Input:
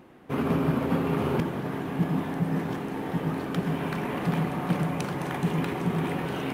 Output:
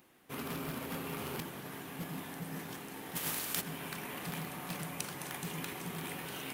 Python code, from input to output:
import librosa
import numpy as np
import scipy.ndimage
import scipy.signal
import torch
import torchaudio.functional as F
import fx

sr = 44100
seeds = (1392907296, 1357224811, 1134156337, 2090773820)

y = fx.spec_flatten(x, sr, power=0.64, at=(3.15, 3.6), fade=0.02)
y = 10.0 ** (-18.5 / 20.0) * (np.abs((y / 10.0 ** (-18.5 / 20.0) + 3.0) % 4.0 - 2.0) - 1.0)
y = librosa.effects.preemphasis(y, coef=0.9, zi=[0.0])
y = y * 10.0 ** (4.0 / 20.0)